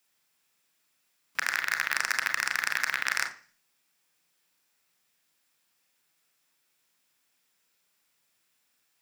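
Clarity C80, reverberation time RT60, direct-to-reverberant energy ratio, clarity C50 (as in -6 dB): 16.5 dB, 0.40 s, 5.0 dB, 11.5 dB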